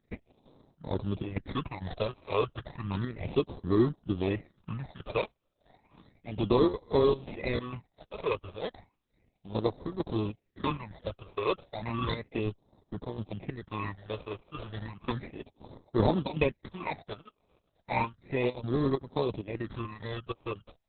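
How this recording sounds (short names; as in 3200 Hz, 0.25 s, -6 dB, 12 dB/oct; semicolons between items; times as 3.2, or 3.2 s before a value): aliases and images of a low sample rate 1500 Hz, jitter 0%; phasing stages 8, 0.33 Hz, lowest notch 230–2500 Hz; chopped level 2.2 Hz, depth 60%, duty 70%; Opus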